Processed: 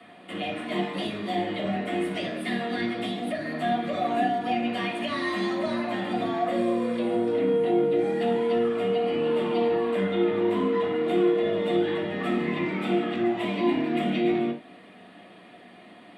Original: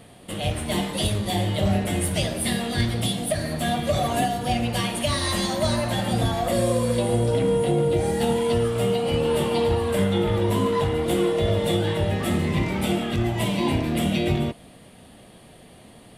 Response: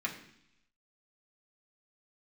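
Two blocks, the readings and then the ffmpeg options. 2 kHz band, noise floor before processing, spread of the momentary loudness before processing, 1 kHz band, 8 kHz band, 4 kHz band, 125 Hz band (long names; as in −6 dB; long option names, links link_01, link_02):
−1.5 dB, −48 dBFS, 3 LU, −1.0 dB, below −20 dB, −7.5 dB, −14.0 dB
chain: -filter_complex "[0:a]acrossover=split=130[link_01][link_02];[link_01]acompressor=threshold=-41dB:ratio=6[link_03];[link_02]highshelf=frequency=5300:gain=-8.5[link_04];[link_03][link_04]amix=inputs=2:normalize=0,acrossover=split=360[link_05][link_06];[link_06]acompressor=threshold=-40dB:ratio=1.5[link_07];[link_05][link_07]amix=inputs=2:normalize=0,acrossover=split=240 5100:gain=0.112 1 0.251[link_08][link_09][link_10];[link_08][link_09][link_10]amix=inputs=3:normalize=0[link_11];[1:a]atrim=start_sample=2205,afade=type=out:start_time=0.14:duration=0.01,atrim=end_sample=6615[link_12];[link_11][link_12]afir=irnorm=-1:irlink=0"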